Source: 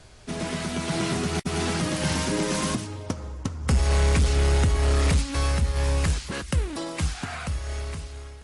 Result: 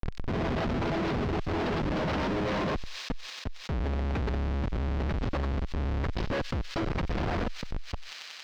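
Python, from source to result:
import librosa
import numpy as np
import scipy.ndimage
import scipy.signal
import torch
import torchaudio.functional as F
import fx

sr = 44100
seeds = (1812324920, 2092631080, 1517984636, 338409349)

p1 = fx.delta_mod(x, sr, bps=32000, step_db=-32.0)
p2 = fx.dereverb_blind(p1, sr, rt60_s=0.62)
p3 = fx.spec_gate(p2, sr, threshold_db=-25, keep='strong')
p4 = fx.bass_treble(p3, sr, bass_db=-10, treble_db=13)
p5 = fx.rider(p4, sr, range_db=5, speed_s=2.0)
p6 = p4 + (p5 * 10.0 ** (1.0 / 20.0))
p7 = fx.schmitt(p6, sr, flips_db=-21.5)
p8 = fx.tube_stage(p7, sr, drive_db=32.0, bias=0.65)
p9 = fx.air_absorb(p8, sr, metres=210.0)
p10 = p9 + fx.echo_wet_highpass(p9, sr, ms=92, feedback_pct=76, hz=4300.0, wet_db=-13, dry=0)
p11 = fx.env_flatten(p10, sr, amount_pct=70)
y = p11 * 10.0 ** (3.5 / 20.0)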